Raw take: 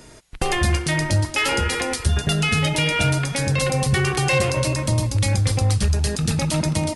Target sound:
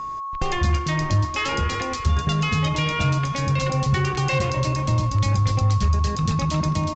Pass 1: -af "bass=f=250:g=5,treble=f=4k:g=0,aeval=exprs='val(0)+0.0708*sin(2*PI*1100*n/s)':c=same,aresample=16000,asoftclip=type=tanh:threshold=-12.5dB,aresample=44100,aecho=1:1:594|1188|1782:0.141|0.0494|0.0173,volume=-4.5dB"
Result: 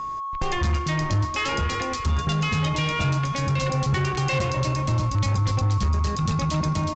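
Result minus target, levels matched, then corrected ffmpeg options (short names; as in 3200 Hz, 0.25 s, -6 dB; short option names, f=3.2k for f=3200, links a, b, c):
soft clip: distortion +12 dB
-af "bass=f=250:g=5,treble=f=4k:g=0,aeval=exprs='val(0)+0.0708*sin(2*PI*1100*n/s)':c=same,aresample=16000,asoftclip=type=tanh:threshold=-4dB,aresample=44100,aecho=1:1:594|1188|1782:0.141|0.0494|0.0173,volume=-4.5dB"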